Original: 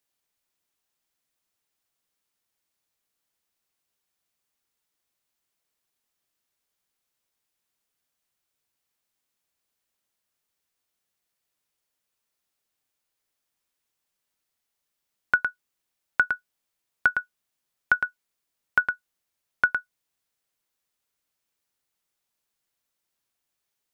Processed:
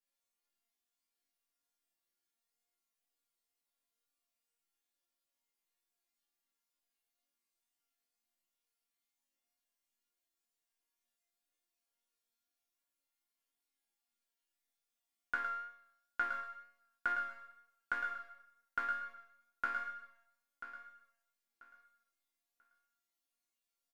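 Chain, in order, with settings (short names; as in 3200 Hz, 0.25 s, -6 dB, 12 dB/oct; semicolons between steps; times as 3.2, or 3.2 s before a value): resonator bank A#3 minor, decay 0.77 s; wow and flutter 20 cents; flange 0.18 Hz, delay 5.1 ms, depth 3.4 ms, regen +75%; feedback echo 0.988 s, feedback 23%, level -12 dB; gain +17.5 dB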